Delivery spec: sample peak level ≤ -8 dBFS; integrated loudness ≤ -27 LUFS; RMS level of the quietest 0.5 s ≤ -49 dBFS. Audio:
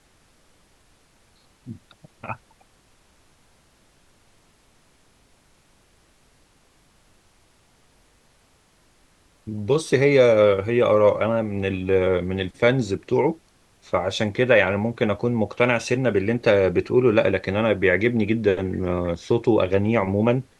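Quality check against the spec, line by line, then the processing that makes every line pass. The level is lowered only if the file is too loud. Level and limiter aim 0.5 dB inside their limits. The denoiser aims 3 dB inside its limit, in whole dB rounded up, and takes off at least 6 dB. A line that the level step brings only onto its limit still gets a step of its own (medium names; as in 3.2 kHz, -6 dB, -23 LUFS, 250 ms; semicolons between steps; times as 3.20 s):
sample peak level -5.0 dBFS: fail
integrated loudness -20.5 LUFS: fail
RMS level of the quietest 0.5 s -60 dBFS: pass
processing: trim -7 dB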